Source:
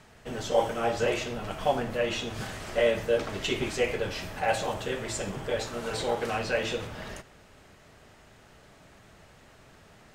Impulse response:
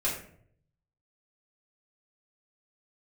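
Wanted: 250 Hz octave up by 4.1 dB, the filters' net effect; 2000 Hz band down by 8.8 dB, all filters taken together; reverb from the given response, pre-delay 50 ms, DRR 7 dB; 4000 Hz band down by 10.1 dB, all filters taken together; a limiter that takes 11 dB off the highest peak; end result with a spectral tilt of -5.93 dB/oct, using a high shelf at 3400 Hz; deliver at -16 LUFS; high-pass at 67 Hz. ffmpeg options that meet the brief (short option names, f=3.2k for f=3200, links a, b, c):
-filter_complex "[0:a]highpass=67,equalizer=f=250:t=o:g=5.5,equalizer=f=2k:t=o:g=-8.5,highshelf=f=3.4k:g=-4,equalizer=f=4k:t=o:g=-7.5,alimiter=limit=-21dB:level=0:latency=1,asplit=2[a][b];[1:a]atrim=start_sample=2205,adelay=50[c];[b][c]afir=irnorm=-1:irlink=0,volume=-14.5dB[d];[a][d]amix=inputs=2:normalize=0,volume=15.5dB"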